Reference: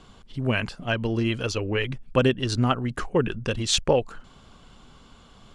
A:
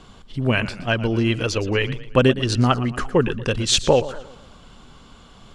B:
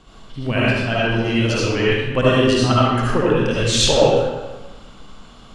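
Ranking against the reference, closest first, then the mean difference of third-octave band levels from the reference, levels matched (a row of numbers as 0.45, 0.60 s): A, B; 2.0, 8.0 dB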